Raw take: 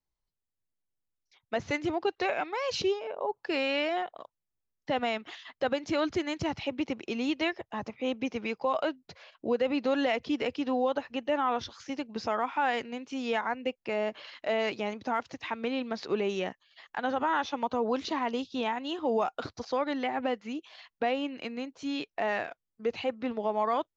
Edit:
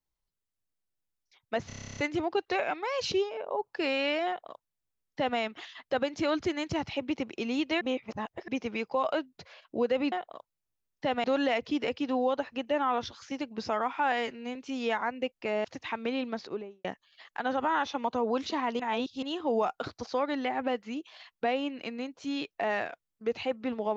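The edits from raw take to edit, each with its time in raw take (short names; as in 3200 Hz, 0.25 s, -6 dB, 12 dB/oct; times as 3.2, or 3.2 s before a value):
1.67 stutter 0.03 s, 11 plays
3.97–5.09 copy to 9.82
7.51–8.18 reverse
12.7–12.99 stretch 1.5×
14.08–15.23 cut
15.84–16.43 studio fade out
18.38–18.81 reverse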